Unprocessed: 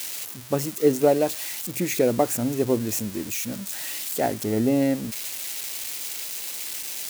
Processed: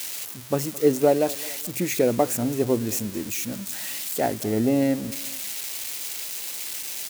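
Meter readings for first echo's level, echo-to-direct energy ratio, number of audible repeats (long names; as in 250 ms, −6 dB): −20.5 dB, −19.5 dB, 2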